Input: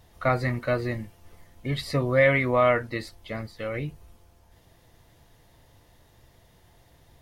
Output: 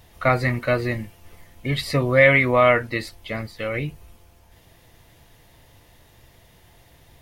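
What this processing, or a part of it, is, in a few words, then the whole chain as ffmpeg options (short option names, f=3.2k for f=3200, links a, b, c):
presence and air boost: -af "equalizer=f=2.5k:t=o:w=0.83:g=5,highshelf=f=10k:g=5.5,volume=4dB"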